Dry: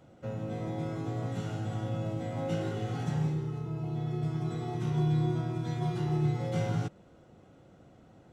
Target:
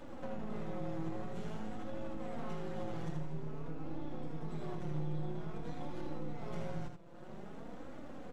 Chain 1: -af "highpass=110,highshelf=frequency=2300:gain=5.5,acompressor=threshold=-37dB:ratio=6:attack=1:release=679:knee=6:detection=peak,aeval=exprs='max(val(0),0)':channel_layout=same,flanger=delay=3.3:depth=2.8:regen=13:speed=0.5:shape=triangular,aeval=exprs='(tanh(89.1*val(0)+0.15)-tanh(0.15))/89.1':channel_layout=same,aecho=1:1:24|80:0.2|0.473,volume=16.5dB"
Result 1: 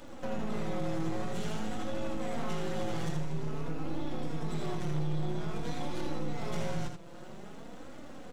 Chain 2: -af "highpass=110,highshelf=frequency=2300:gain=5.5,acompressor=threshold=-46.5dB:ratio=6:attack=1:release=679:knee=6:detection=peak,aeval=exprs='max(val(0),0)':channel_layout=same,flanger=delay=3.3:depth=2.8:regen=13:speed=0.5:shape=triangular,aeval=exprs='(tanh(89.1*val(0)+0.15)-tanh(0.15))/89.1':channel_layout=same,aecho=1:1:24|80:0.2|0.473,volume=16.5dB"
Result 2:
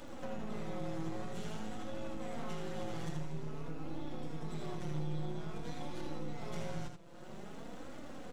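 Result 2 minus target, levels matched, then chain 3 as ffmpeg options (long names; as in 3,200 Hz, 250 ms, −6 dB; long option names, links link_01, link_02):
4,000 Hz band +6.5 dB
-af "highpass=110,highshelf=frequency=2300:gain=-5.5,acompressor=threshold=-46.5dB:ratio=6:attack=1:release=679:knee=6:detection=peak,aeval=exprs='max(val(0),0)':channel_layout=same,flanger=delay=3.3:depth=2.8:regen=13:speed=0.5:shape=triangular,aeval=exprs='(tanh(89.1*val(0)+0.15)-tanh(0.15))/89.1':channel_layout=same,aecho=1:1:24|80:0.2|0.473,volume=16.5dB"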